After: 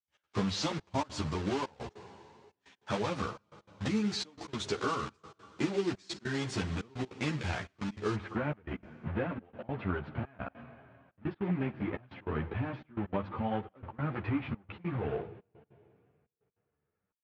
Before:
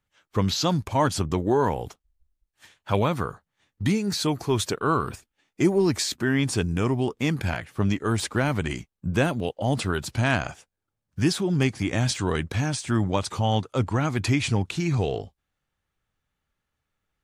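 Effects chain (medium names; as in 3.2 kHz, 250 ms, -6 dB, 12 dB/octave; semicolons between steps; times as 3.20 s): block-companded coder 3-bit; Bessel low-pass 5 kHz, order 6, from 8.14 s 1.6 kHz; Schroeder reverb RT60 2.4 s, combs from 26 ms, DRR 17 dB; compression, threshold -24 dBFS, peak gain reduction 9 dB; high-pass 76 Hz; hum notches 50/100 Hz; trance gate ".x.xxxxxxx." 192 bpm -24 dB; three-phase chorus; trim -1 dB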